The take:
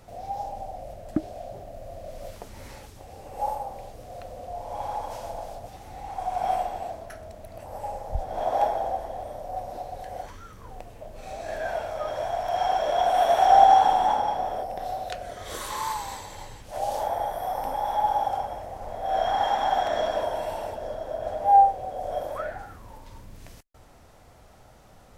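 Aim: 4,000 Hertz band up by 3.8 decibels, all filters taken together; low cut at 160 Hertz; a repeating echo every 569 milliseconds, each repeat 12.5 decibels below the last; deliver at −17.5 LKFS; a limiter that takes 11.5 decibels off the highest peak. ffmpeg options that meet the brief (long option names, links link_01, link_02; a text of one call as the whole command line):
ffmpeg -i in.wav -af "highpass=160,equalizer=frequency=4000:width_type=o:gain=5,alimiter=limit=-15dB:level=0:latency=1,aecho=1:1:569|1138|1707:0.237|0.0569|0.0137,volume=11dB" out.wav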